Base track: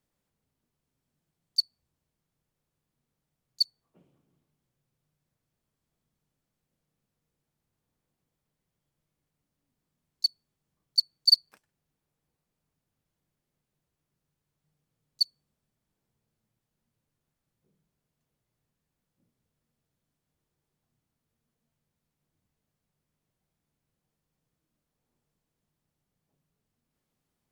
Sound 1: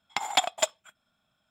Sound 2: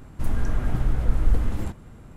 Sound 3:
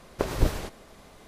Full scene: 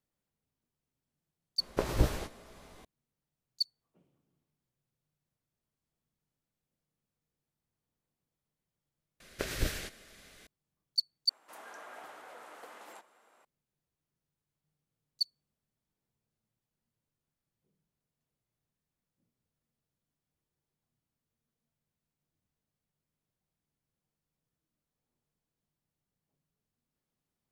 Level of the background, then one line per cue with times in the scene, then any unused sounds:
base track -6.5 dB
1.58 add 3 -4 dB + doubler 17 ms -8 dB
9.2 replace with 3 -9.5 dB + EQ curve 610 Hz 0 dB, 970 Hz -7 dB, 1600 Hz +10 dB
11.29 replace with 2 -3.5 dB + ladder high-pass 500 Hz, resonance 20%
not used: 1

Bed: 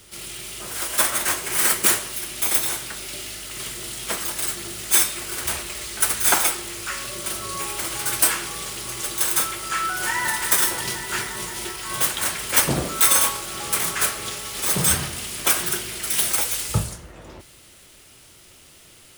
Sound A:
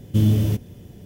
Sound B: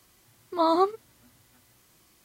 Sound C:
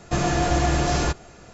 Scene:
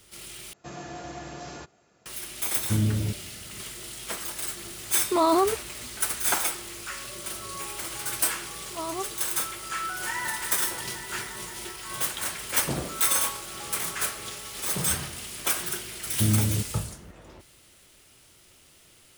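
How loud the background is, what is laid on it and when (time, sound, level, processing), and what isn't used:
bed -7 dB
0.53 replace with C -16 dB + Bessel high-pass 150 Hz
2.56 add A -7 dB
4.59 add B -13 dB + maximiser +23.5 dB
8.18 add B -11.5 dB
16.06 add A -6 dB

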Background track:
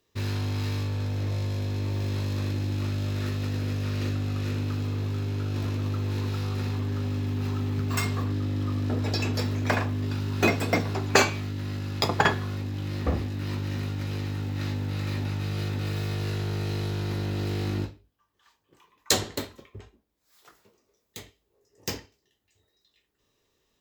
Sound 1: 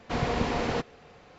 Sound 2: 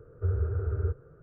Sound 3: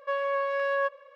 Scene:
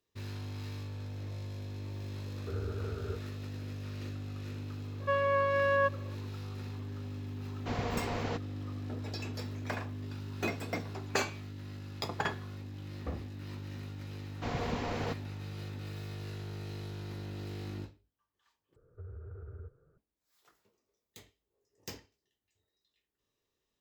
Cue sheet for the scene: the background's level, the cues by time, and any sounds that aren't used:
background track -12 dB
2.25 add 2 -0.5 dB + tone controls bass -13 dB, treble +10 dB
5 add 3 -0.5 dB
7.56 add 1 -7.5 dB
14.32 add 1 -7.5 dB
18.76 replace with 2 -13.5 dB + compressor, threshold -28 dBFS

